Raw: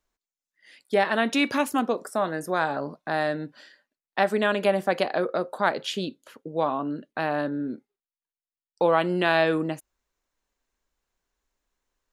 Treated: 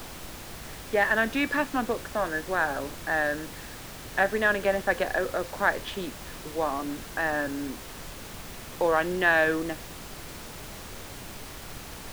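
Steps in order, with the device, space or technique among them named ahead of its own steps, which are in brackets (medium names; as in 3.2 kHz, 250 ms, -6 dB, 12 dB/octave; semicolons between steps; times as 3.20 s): horn gramophone (band-pass 200–3100 Hz; peaking EQ 1.7 kHz +12 dB 0.21 oct; wow and flutter; pink noise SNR 11 dB); trim -3 dB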